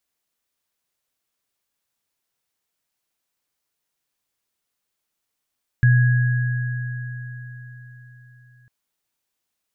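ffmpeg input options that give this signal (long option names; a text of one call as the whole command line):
ffmpeg -f lavfi -i "aevalsrc='0.299*pow(10,-3*t/4.22)*sin(2*PI*123*t)+0.0841*pow(10,-3*t/4.67)*sin(2*PI*1660*t)':duration=2.85:sample_rate=44100" out.wav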